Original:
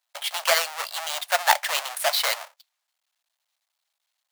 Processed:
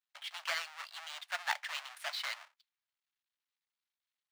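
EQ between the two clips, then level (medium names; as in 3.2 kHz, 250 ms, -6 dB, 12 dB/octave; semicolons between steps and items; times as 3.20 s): high-pass 1.4 kHz 12 dB/octave; treble shelf 11 kHz -11 dB; peaking EQ 16 kHz -12.5 dB 1.8 oct; -8.5 dB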